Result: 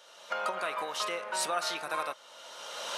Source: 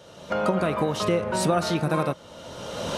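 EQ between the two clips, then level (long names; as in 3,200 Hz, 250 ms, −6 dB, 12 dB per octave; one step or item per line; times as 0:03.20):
high-pass filter 980 Hz 12 dB per octave
−2.0 dB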